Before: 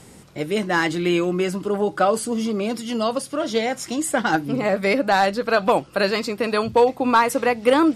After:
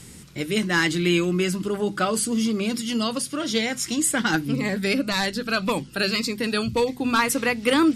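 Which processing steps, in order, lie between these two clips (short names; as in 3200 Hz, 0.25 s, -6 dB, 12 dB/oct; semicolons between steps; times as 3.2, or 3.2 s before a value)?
bell 680 Hz -14.5 dB 1.8 oct; notches 50/100/150/200/250 Hz; 4.55–7.19 cascading phaser falling 1.8 Hz; gain +5 dB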